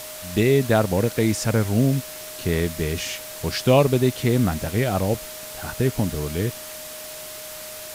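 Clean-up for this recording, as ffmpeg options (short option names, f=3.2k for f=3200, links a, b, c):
-af "bandreject=f=620:w=30,afwtdn=0.016"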